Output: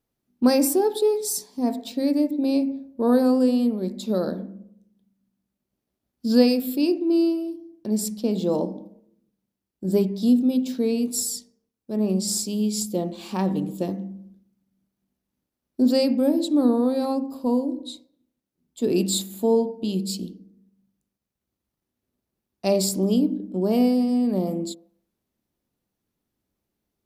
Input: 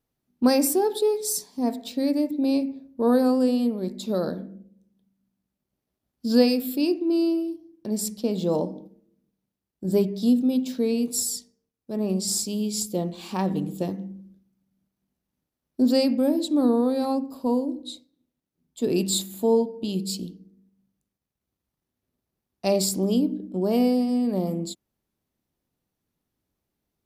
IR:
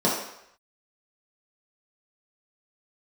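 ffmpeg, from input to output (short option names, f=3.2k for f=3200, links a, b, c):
-filter_complex "[0:a]asplit=2[a][b];[1:a]atrim=start_sample=2205,lowpass=1.2k[c];[b][c]afir=irnorm=-1:irlink=0,volume=-30.5dB[d];[a][d]amix=inputs=2:normalize=0"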